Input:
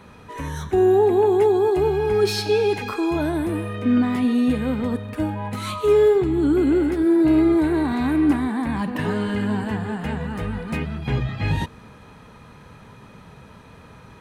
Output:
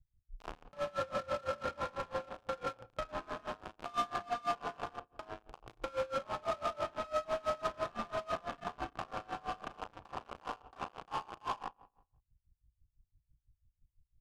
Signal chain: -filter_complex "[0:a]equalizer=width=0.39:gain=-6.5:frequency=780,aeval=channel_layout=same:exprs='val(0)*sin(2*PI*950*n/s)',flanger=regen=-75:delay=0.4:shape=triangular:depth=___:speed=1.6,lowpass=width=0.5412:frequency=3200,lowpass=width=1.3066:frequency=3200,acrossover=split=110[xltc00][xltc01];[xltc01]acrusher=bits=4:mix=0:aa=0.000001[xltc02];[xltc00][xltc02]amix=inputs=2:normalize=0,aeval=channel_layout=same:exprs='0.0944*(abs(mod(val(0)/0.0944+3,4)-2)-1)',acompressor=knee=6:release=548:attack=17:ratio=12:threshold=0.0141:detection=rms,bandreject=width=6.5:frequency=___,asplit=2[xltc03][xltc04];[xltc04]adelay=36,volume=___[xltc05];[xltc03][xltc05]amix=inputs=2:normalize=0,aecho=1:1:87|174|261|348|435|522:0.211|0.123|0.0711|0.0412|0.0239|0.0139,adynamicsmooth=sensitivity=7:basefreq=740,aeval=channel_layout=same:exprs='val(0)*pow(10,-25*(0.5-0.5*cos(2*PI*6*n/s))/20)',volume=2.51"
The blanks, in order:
2.9, 2000, 0.794